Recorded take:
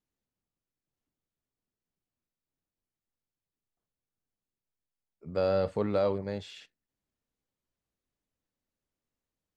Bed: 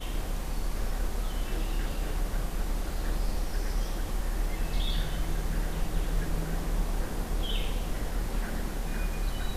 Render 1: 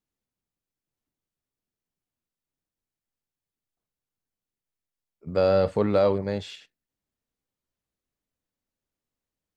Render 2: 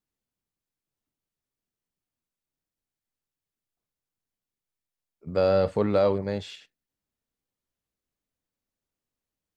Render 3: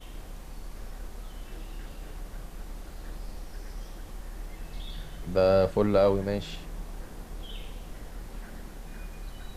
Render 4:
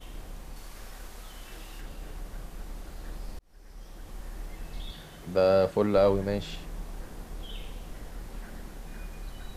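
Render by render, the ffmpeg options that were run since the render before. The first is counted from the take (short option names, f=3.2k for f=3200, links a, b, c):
-filter_complex "[0:a]asettb=1/sr,asplit=3[a][b][c];[a]atrim=end=5.274[d];[b]atrim=start=5.27:end=6.56,asetpts=PTS-STARTPTS,afade=t=in:d=0.004:c=qsin,afade=t=out:st=1.286:d=0.004:c=qsin,acontrast=69[e];[c]atrim=start=6.556[f];[d][e]acrossfade=d=0.004:c1=hsin:c2=qsin[g];[g][f]acrossfade=d=0.004:c1=qsin:c2=hsin"
-af "volume=-1dB"
-filter_complex "[1:a]volume=-9.5dB[a];[0:a][a]amix=inputs=2:normalize=0"
-filter_complex "[0:a]asettb=1/sr,asplit=3[a][b][c];[a]atrim=end=0.564[d];[b]atrim=start=0.56:end=1.81,asetpts=PTS-STARTPTS,afade=t=in:d=0.004:c=qsin,afade=t=out:st=1.246:d=0.004:c=qsin,tiltshelf=f=700:g=-4.5[e];[c]atrim=start=1.806[f];[d][e]acrossfade=d=0.004:c1=hsin:c2=qsin[g];[g][f]acrossfade=d=0.004:c1=qsin:c2=hsin,asettb=1/sr,asplit=3[h][i][j];[h]atrim=end=4.914[k];[i]atrim=start=4.91:end=5.97,asetpts=PTS-STARTPTS,afade=t=in:d=0.004:c=qsin,afade=t=out:st=1.056:d=0.004:c=qsin,highpass=f=130:p=1[l];[j]atrim=start=5.966[m];[k][l]acrossfade=d=0.004:c1=hsin:c2=qsin[n];[n][m]acrossfade=d=0.004:c1=qsin:c2=hsin,asplit=2[o][p];[o]atrim=end=3.39,asetpts=PTS-STARTPTS,afade=t=out:st=3.386:d=0.004:c=hsin[q];[p]atrim=start=3.39,asetpts=PTS-STARTPTS,afade=t=in:d=0.84[r];[q][r]concat=n=2:v=0:a=1"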